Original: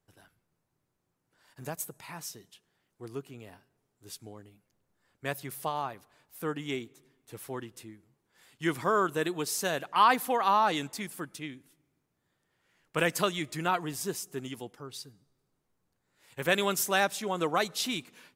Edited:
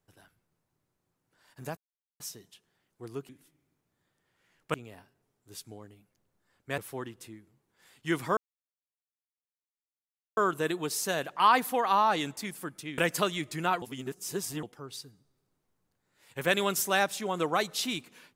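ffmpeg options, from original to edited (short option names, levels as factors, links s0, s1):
-filter_complex "[0:a]asplit=10[s0][s1][s2][s3][s4][s5][s6][s7][s8][s9];[s0]atrim=end=1.77,asetpts=PTS-STARTPTS,afade=t=out:st=1.766:d=0.004:c=hsin[s10];[s1]atrim=start=1.77:end=2.2,asetpts=PTS-STARTPTS,volume=0[s11];[s2]atrim=start=2.2:end=3.292,asetpts=PTS-STARTPTS,afade=t=in:d=0.004:c=hsin[s12];[s3]atrim=start=11.538:end=12.992[s13];[s4]atrim=start=3.288:end=5.332[s14];[s5]atrim=start=7.338:end=8.93,asetpts=PTS-STARTPTS,afade=t=out:st=1.588:d=0.004:c=hsin,apad=pad_dur=2[s15];[s6]atrim=start=8.93:end=11.542,asetpts=PTS-STARTPTS,afade=t=in:d=0.004:c=hsin[s16];[s7]atrim=start=12.988:end=13.832[s17];[s8]atrim=start=13.828:end=14.642,asetpts=PTS-STARTPTS,areverse[s18];[s9]atrim=start=14.638[s19];[s10][s11][s12]concat=n=3:v=0:a=1[s20];[s20][s13]acrossfade=d=0.004:c1=hsin:c2=hsin[s21];[s21][s14]acrossfade=d=0.004:c1=hsin:c2=hsin[s22];[s15][s16]concat=n=2:v=0:a=1[s23];[s22][s23]acrossfade=d=0.004:c1=hsin:c2=hsin[s24];[s24][s17]acrossfade=d=0.004:c1=hsin:c2=hsin[s25];[s25][s18]acrossfade=d=0.004:c1=hsin:c2=hsin[s26];[s26][s19]acrossfade=d=0.004:c1=hsin:c2=hsin"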